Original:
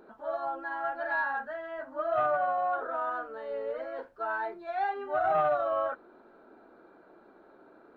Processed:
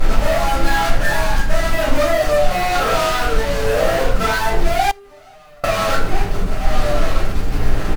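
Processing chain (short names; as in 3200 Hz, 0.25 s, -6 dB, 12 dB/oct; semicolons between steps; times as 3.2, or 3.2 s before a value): 0.86–1.5 metallic resonator 64 Hz, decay 0.45 s, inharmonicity 0.008; 2.02–2.51 inverse Chebyshev low-pass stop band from 3200 Hz, stop band 80 dB; outdoor echo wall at 230 m, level -23 dB; tremolo 1 Hz, depth 71%; added noise brown -50 dBFS; reverb removal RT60 0.53 s; fuzz box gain 60 dB, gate -53 dBFS; low shelf 180 Hz +3 dB; shoebox room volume 71 m³, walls mixed, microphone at 2.2 m; 4.91–5.64 compressor 8:1, threshold -29 dBFS, peak gain reduction 31 dB; gain -13.5 dB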